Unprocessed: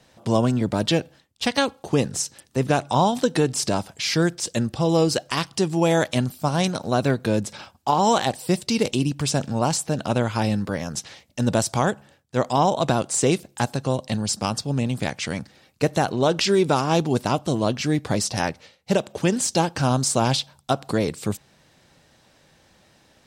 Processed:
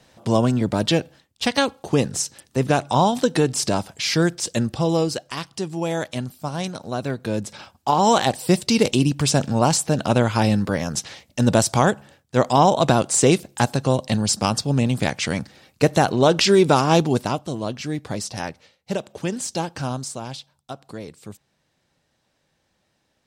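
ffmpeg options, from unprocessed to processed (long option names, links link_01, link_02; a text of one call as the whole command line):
ffmpeg -i in.wav -af "volume=11dB,afade=type=out:start_time=4.75:duration=0.46:silence=0.446684,afade=type=in:start_time=7.09:duration=1.38:silence=0.334965,afade=type=out:start_time=16.95:duration=0.5:silence=0.354813,afade=type=out:start_time=19.8:duration=0.41:silence=0.421697" out.wav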